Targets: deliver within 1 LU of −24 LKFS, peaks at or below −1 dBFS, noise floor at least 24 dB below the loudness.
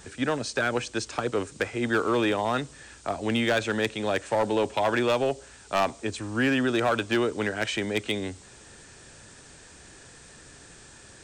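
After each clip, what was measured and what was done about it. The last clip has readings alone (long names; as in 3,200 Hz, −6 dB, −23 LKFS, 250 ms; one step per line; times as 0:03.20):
share of clipped samples 0.9%; peaks flattened at −17.5 dBFS; background noise floor −50 dBFS; target noise floor −51 dBFS; integrated loudness −27.0 LKFS; sample peak −17.5 dBFS; target loudness −24.0 LKFS
→ clipped peaks rebuilt −17.5 dBFS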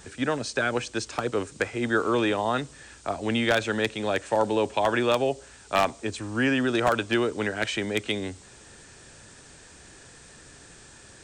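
share of clipped samples 0.0%; background noise floor −50 dBFS; target noise floor −51 dBFS
→ noise reduction from a noise print 6 dB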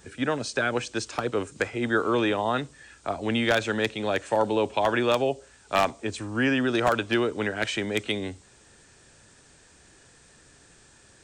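background noise floor −56 dBFS; integrated loudness −26.5 LKFS; sample peak −8.5 dBFS; target loudness −24.0 LKFS
→ level +2.5 dB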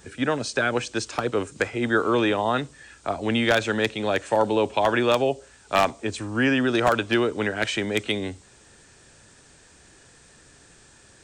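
integrated loudness −24.0 LKFS; sample peak −6.0 dBFS; background noise floor −54 dBFS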